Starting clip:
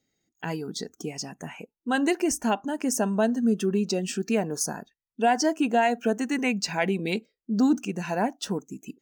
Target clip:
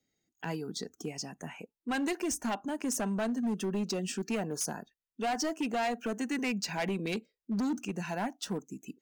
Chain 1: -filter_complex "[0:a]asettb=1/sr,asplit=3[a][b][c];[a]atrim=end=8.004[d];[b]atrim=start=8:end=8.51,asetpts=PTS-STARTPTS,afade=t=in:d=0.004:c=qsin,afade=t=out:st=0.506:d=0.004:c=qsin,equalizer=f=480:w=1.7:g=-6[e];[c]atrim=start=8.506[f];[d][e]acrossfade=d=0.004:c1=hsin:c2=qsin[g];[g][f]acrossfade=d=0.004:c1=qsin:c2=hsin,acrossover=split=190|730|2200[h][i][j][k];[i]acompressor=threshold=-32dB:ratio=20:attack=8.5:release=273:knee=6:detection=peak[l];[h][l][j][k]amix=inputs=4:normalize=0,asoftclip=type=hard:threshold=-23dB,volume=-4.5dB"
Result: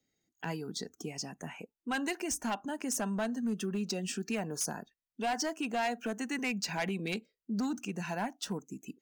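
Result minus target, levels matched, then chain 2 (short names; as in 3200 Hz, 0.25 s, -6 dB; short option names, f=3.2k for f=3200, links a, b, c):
compressor: peak gain reduction +8 dB
-filter_complex "[0:a]asettb=1/sr,asplit=3[a][b][c];[a]atrim=end=8.004[d];[b]atrim=start=8:end=8.51,asetpts=PTS-STARTPTS,afade=t=in:d=0.004:c=qsin,afade=t=out:st=0.506:d=0.004:c=qsin,equalizer=f=480:w=1.7:g=-6[e];[c]atrim=start=8.506[f];[d][e]acrossfade=d=0.004:c1=hsin:c2=qsin[g];[g][f]acrossfade=d=0.004:c1=qsin:c2=hsin,acrossover=split=190|730|2200[h][i][j][k];[i]acompressor=threshold=-23.5dB:ratio=20:attack=8.5:release=273:knee=6:detection=peak[l];[h][l][j][k]amix=inputs=4:normalize=0,asoftclip=type=hard:threshold=-23dB,volume=-4.5dB"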